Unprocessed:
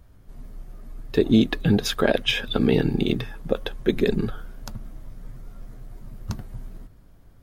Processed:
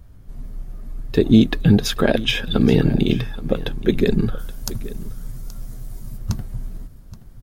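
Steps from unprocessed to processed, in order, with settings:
bass and treble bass +6 dB, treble +2 dB, from 0:04.38 treble +15 dB, from 0:06.16 treble +6 dB
single-tap delay 825 ms −17 dB
level +1.5 dB

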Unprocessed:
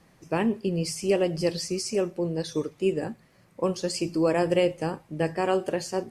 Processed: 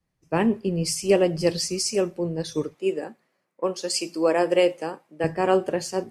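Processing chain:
0:02.74–0:05.24: high-pass filter 310 Hz 12 dB per octave
multiband upward and downward expander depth 70%
level +3 dB

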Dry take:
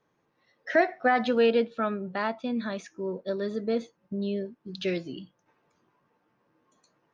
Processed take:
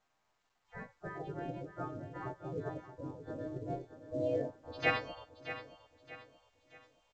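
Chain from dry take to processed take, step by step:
every partial snapped to a pitch grid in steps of 2 semitones
parametric band 400 Hz +9.5 dB 0.23 octaves
speech leveller within 4 dB 2 s
low-pass filter sweep 210 Hz → 1,000 Hz, 0:03.75–0:04.89
gate on every frequency bin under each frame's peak −30 dB weak
on a send: repeating echo 625 ms, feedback 38%, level −12 dB
on the sum: level +15.5 dB
mu-law 128 kbit/s 16,000 Hz

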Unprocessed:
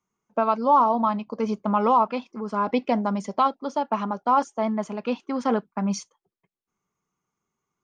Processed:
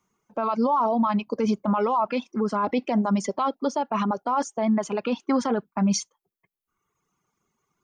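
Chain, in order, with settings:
reverb reduction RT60 1 s
in parallel at +0.5 dB: compressor whose output falls as the input rises −25 dBFS
on the sum: brickwall limiter −16.5 dBFS, peak gain reduction 11 dB
level +1 dB

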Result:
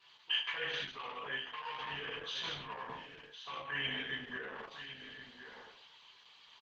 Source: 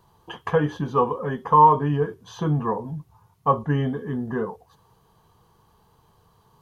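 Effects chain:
reverb whose tail is shaped and stops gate 280 ms falling, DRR −5 dB
in parallel at −7 dB: soft clipping −13 dBFS, distortion −8 dB
on the sum: first difference
reversed playback
downward compressor 10 to 1, threshold −43 dBFS, peak gain reduction 23.5 dB
reversed playback
low-pass filter 3,300 Hz 24 dB per octave
high shelf with overshoot 1,600 Hz +11 dB, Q 1.5
mains-hum notches 50/100/150/200/250/300/350/400 Hz
double-tracking delay 15 ms −4 dB
single-tap delay 1,061 ms −10.5 dB
level +2 dB
Opus 10 kbit/s 48,000 Hz

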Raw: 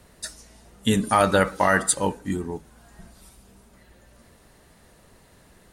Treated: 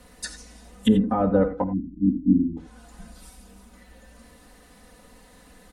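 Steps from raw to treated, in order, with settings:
treble cut that deepens with the level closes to 520 Hz, closed at −20 dBFS
0:01.63–0:02.57: time-frequency box erased 350–12,000 Hz
0:02.02–0:02.46: parametric band 250 Hz +8 dB 0.91 octaves
comb filter 4 ms, depth 94%
reverb whose tail is shaped and stops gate 110 ms rising, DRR 11 dB

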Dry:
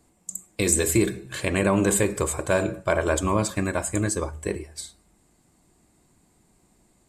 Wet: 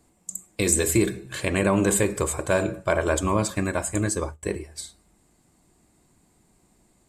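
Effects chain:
0:03.94–0:04.43: noise gate −32 dBFS, range −20 dB

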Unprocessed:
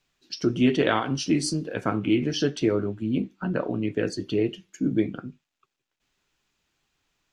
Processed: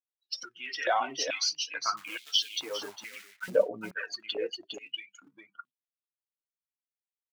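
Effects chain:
spectral dynamics exaggerated over time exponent 2
square-wave tremolo 0.71 Hz, depth 65%, duty 10%
in parallel at +1 dB: downward compressor 10 to 1, threshold −41 dBFS, peak gain reduction 15 dB
on the sum: Butterworth low-pass 6,400 Hz 96 dB per octave
phase shifter 0.56 Hz, delay 4.1 ms, feedback 46%
brickwall limiter −29 dBFS, peak gain reduction 10 dB
0:01.97–0:03.50: log-companded quantiser 6 bits
on a send: single-tap delay 407 ms −5 dB
on the sum: high-pass on a step sequencer 2.3 Hz 510–3,400 Hz
level +7.5 dB

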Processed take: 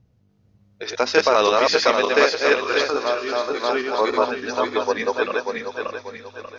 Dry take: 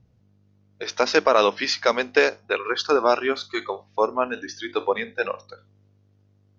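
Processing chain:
feedback delay that plays each chunk backwards 294 ms, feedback 61%, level −1 dB
0:02.90–0:03.60: tuned comb filter 55 Hz, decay 0.4 s, harmonics all, mix 70%
delay with a high-pass on its return 499 ms, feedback 57%, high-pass 4,300 Hz, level −9.5 dB

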